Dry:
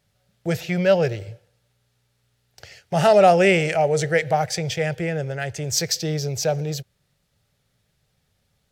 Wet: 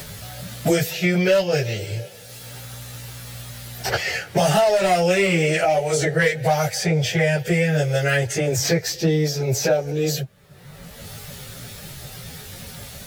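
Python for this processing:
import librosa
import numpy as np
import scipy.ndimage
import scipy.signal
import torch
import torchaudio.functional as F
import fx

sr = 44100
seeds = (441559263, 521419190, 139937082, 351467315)

p1 = fx.high_shelf(x, sr, hz=11000.0, db=11.0)
p2 = 10.0 ** (-12.0 / 20.0) * (np.abs((p1 / 10.0 ** (-12.0 / 20.0) + 3.0) % 4.0 - 2.0) - 1.0)
p3 = p1 + (p2 * 10.0 ** (-3.5 / 20.0))
p4 = fx.stretch_vocoder_free(p3, sr, factor=1.5)
y = fx.band_squash(p4, sr, depth_pct=100)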